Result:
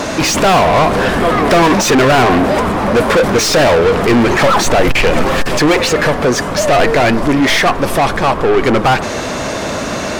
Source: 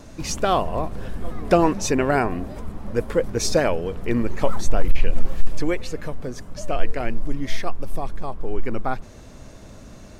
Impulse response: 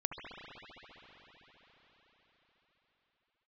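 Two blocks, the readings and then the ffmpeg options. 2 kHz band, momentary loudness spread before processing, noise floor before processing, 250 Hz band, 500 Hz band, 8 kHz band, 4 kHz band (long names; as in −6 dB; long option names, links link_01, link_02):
+18.5 dB, 14 LU, −42 dBFS, +13.0 dB, +13.5 dB, +13.5 dB, +18.0 dB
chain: -filter_complex "[0:a]asplit=2[link_01][link_02];[link_02]highpass=frequency=720:poles=1,volume=40dB,asoftclip=type=tanh:threshold=-2dB[link_03];[link_01][link_03]amix=inputs=2:normalize=0,lowpass=frequency=3000:poles=1,volume=-6dB,bandreject=frequency=106.6:width_type=h:width=4,bandreject=frequency=213.2:width_type=h:width=4,bandreject=frequency=319.8:width_type=h:width=4,bandreject=frequency=426.4:width_type=h:width=4,bandreject=frequency=533:width_type=h:width=4,bandreject=frequency=639.6:width_type=h:width=4,bandreject=frequency=746.2:width_type=h:width=4,bandreject=frequency=852.8:width_type=h:width=4,bandreject=frequency=959.4:width_type=h:width=4,bandreject=frequency=1066:width_type=h:width=4,bandreject=frequency=1172.6:width_type=h:width=4,bandreject=frequency=1279.2:width_type=h:width=4,bandreject=frequency=1385.8:width_type=h:width=4,bandreject=frequency=1492.4:width_type=h:width=4,bandreject=frequency=1599:width_type=h:width=4,bandreject=frequency=1705.6:width_type=h:width=4,bandreject=frequency=1812.2:width_type=h:width=4"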